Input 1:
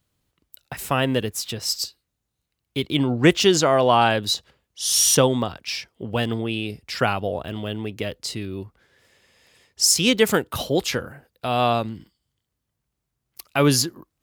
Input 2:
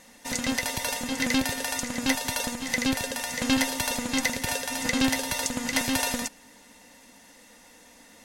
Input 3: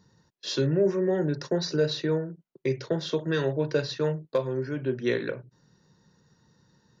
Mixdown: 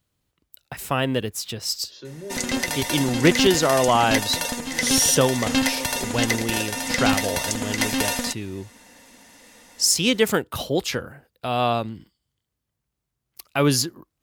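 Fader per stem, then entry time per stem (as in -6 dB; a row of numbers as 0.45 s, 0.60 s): -1.5 dB, +2.5 dB, -13.5 dB; 0.00 s, 2.05 s, 1.45 s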